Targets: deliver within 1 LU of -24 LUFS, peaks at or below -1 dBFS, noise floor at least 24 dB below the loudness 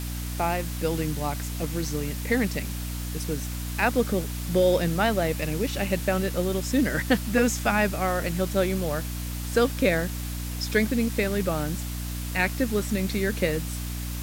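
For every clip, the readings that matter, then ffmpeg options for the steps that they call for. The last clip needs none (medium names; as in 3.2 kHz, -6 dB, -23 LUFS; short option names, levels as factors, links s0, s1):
hum 60 Hz; highest harmonic 300 Hz; hum level -30 dBFS; noise floor -32 dBFS; noise floor target -51 dBFS; loudness -26.5 LUFS; peak level -7.5 dBFS; loudness target -24.0 LUFS
-> -af "bandreject=f=60:t=h:w=4,bandreject=f=120:t=h:w=4,bandreject=f=180:t=h:w=4,bandreject=f=240:t=h:w=4,bandreject=f=300:t=h:w=4"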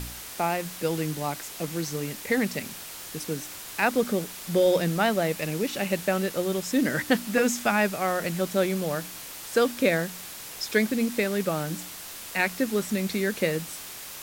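hum not found; noise floor -40 dBFS; noise floor target -51 dBFS
-> -af "afftdn=nr=11:nf=-40"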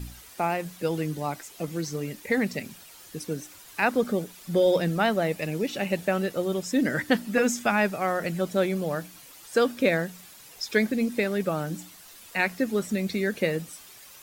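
noise floor -49 dBFS; noise floor target -51 dBFS
-> -af "afftdn=nr=6:nf=-49"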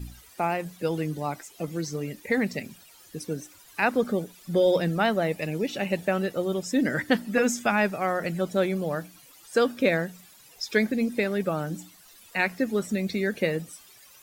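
noise floor -53 dBFS; loudness -27.0 LUFS; peak level -8.5 dBFS; loudness target -24.0 LUFS
-> -af "volume=1.41"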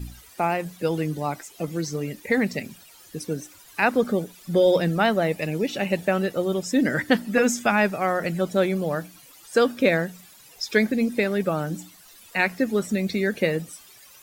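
loudness -24.0 LUFS; peak level -5.5 dBFS; noise floor -50 dBFS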